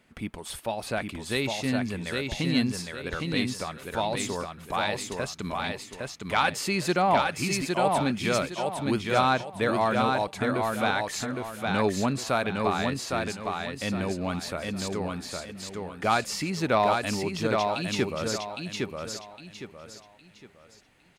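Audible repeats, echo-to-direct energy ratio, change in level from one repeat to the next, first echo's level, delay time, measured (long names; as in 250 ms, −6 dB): 4, −3.0 dB, −10.0 dB, −3.5 dB, 810 ms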